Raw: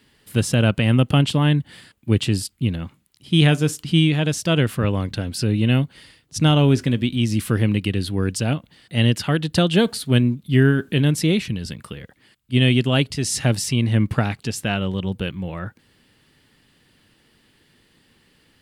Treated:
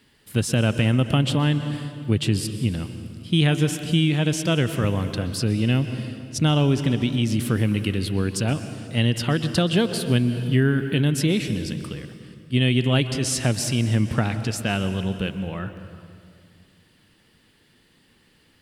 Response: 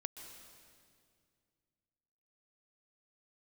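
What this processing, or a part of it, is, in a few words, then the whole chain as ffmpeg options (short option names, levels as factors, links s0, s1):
ducked reverb: -filter_complex "[0:a]asplit=3[s0][s1][s2];[1:a]atrim=start_sample=2205[s3];[s1][s3]afir=irnorm=-1:irlink=0[s4];[s2]apad=whole_len=820762[s5];[s4][s5]sidechaincompress=threshold=0.126:ratio=8:attack=45:release=161,volume=2[s6];[s0][s6]amix=inputs=2:normalize=0,volume=0.376"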